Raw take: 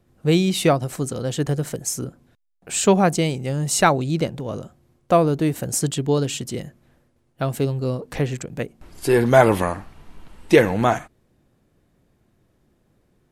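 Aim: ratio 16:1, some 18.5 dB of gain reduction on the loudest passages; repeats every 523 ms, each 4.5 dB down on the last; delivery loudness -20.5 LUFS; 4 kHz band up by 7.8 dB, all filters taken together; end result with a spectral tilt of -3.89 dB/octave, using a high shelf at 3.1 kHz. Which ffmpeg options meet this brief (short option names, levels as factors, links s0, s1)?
-af "highshelf=f=3100:g=5,equalizer=f=4000:t=o:g=6,acompressor=threshold=0.0501:ratio=16,aecho=1:1:523|1046|1569|2092|2615|3138|3661|4184|4707:0.596|0.357|0.214|0.129|0.0772|0.0463|0.0278|0.0167|0.01,volume=2.99"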